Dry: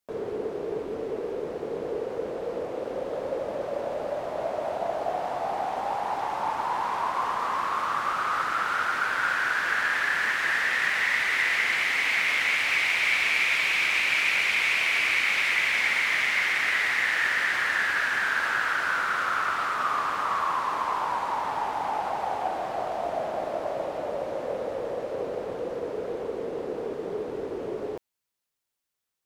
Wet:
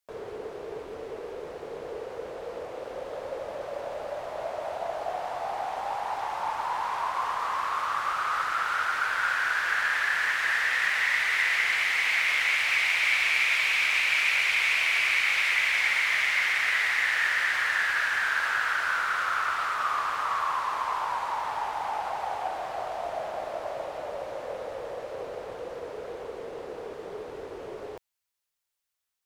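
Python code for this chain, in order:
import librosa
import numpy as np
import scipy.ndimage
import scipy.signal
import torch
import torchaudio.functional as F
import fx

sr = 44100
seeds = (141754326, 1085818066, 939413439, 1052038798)

y = fx.peak_eq(x, sr, hz=240.0, db=-11.5, octaves=2.0)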